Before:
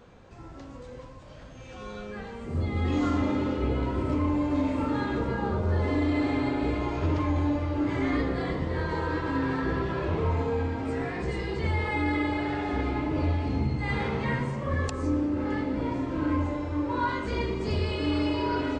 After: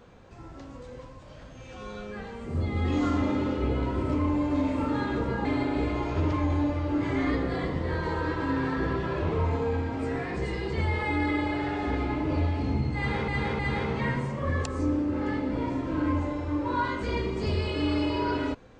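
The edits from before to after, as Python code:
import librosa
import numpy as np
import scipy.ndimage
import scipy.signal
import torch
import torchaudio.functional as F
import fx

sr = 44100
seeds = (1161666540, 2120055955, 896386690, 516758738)

y = fx.edit(x, sr, fx.cut(start_s=5.45, length_s=0.86),
    fx.repeat(start_s=13.83, length_s=0.31, count=3), tone=tone)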